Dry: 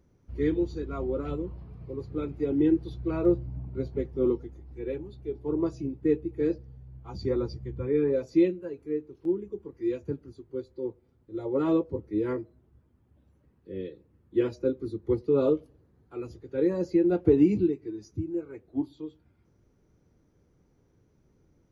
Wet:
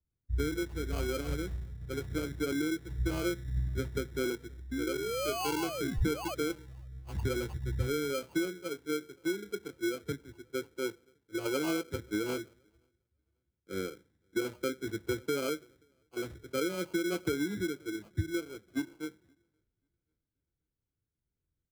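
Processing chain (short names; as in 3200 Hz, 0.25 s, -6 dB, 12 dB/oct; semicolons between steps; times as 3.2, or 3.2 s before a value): painted sound rise, 4.71–6.35, 250–3200 Hz -33 dBFS; in parallel at -3 dB: limiter -21 dBFS, peak gain reduction 11 dB; on the sum: compressor 10:1, threshold -28 dBFS, peak gain reduction 15 dB; on a send: feedback echo 0.532 s, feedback 56%, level -23 dB; on the sum: sample-and-hold 24×; three-band expander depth 100%; gain -2 dB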